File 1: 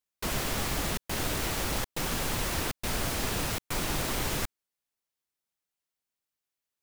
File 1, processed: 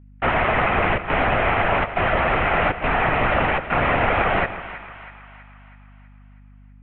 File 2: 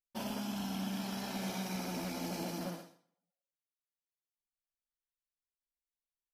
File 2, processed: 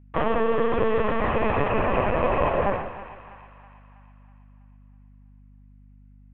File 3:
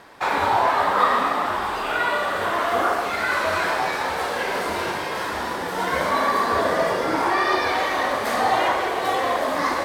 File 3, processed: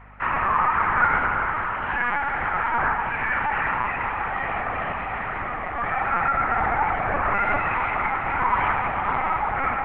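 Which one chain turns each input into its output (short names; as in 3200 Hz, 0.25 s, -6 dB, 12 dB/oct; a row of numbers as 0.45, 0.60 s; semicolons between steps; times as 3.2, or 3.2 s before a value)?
mistuned SSB +240 Hz 210–2300 Hz; LPC vocoder at 8 kHz pitch kept; split-band echo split 860 Hz, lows 0.153 s, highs 0.324 s, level -13 dB; hum 50 Hz, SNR 25 dB; normalise peaks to -6 dBFS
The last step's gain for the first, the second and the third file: +16.0, +19.0, -1.5 dB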